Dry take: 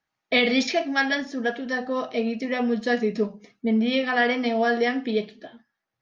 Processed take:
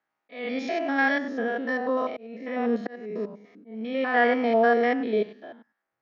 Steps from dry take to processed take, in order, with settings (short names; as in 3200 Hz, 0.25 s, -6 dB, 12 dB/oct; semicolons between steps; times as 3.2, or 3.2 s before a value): stepped spectrum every 0.1 s; auto swell 0.596 s; three-band isolator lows -15 dB, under 230 Hz, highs -13 dB, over 2300 Hz; gain +4 dB